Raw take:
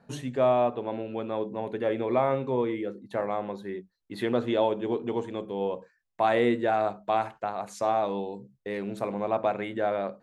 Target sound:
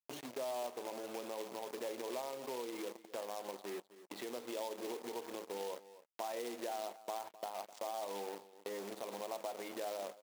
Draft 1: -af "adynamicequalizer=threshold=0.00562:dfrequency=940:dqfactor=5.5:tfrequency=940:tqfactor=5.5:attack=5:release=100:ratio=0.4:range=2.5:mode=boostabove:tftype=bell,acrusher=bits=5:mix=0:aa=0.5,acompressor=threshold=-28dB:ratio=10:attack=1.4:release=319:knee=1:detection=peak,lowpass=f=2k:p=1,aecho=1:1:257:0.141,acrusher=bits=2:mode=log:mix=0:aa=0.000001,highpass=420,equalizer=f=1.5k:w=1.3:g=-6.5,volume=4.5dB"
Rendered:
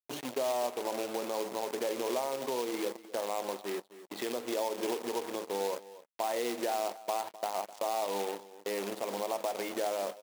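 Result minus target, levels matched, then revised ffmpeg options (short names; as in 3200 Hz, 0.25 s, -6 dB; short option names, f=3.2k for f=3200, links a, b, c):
compressor: peak gain reduction -8.5 dB
-af "adynamicequalizer=threshold=0.00562:dfrequency=940:dqfactor=5.5:tfrequency=940:tqfactor=5.5:attack=5:release=100:ratio=0.4:range=2.5:mode=boostabove:tftype=bell,acrusher=bits=5:mix=0:aa=0.5,acompressor=threshold=-37.5dB:ratio=10:attack=1.4:release=319:knee=1:detection=peak,lowpass=f=2k:p=1,aecho=1:1:257:0.141,acrusher=bits=2:mode=log:mix=0:aa=0.000001,highpass=420,equalizer=f=1.5k:w=1.3:g=-6.5,volume=4.5dB"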